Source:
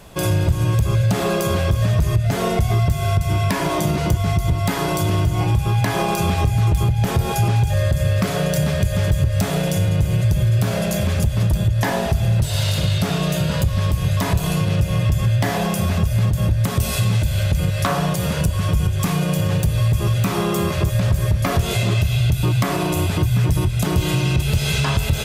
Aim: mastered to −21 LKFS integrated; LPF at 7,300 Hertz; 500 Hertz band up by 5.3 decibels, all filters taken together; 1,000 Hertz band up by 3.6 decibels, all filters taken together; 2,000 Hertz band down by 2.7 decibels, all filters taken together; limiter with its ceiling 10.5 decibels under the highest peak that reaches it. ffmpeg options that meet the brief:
ffmpeg -i in.wav -af "lowpass=7300,equalizer=frequency=500:width_type=o:gain=6,equalizer=frequency=1000:width_type=o:gain=3.5,equalizer=frequency=2000:width_type=o:gain=-5,volume=2.5dB,alimiter=limit=-13dB:level=0:latency=1" out.wav

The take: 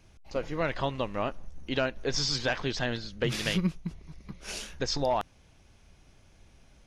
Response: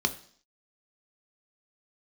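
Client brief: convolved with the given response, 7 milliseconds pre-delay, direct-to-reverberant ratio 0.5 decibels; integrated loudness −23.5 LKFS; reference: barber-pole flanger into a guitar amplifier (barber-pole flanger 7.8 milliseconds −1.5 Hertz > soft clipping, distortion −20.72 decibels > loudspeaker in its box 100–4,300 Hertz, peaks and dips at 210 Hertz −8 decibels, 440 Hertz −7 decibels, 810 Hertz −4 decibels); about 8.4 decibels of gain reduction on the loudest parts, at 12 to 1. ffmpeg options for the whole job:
-filter_complex "[0:a]acompressor=threshold=-31dB:ratio=12,asplit=2[link_01][link_02];[1:a]atrim=start_sample=2205,adelay=7[link_03];[link_02][link_03]afir=irnorm=-1:irlink=0,volume=-9dB[link_04];[link_01][link_04]amix=inputs=2:normalize=0,asplit=2[link_05][link_06];[link_06]adelay=7.8,afreqshift=-1.5[link_07];[link_05][link_07]amix=inputs=2:normalize=1,asoftclip=threshold=-25dB,highpass=100,equalizer=frequency=210:width_type=q:width=4:gain=-8,equalizer=frequency=440:width_type=q:width=4:gain=-7,equalizer=frequency=810:width_type=q:width=4:gain=-4,lowpass=frequency=4300:width=0.5412,lowpass=frequency=4300:width=1.3066,volume=17.5dB"

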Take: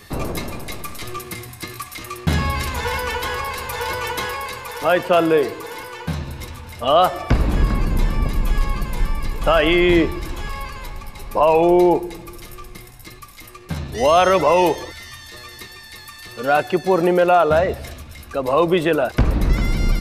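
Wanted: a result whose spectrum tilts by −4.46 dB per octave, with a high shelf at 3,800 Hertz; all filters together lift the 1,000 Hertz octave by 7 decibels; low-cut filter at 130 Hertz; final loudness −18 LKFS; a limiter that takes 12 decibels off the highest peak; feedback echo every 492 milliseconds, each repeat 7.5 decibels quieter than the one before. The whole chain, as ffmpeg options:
ffmpeg -i in.wav -af "highpass=130,equalizer=frequency=1000:width_type=o:gain=9,highshelf=frequency=3800:gain=4,alimiter=limit=-9.5dB:level=0:latency=1,aecho=1:1:492|984|1476|1968|2460:0.422|0.177|0.0744|0.0312|0.0131,volume=3dB" out.wav

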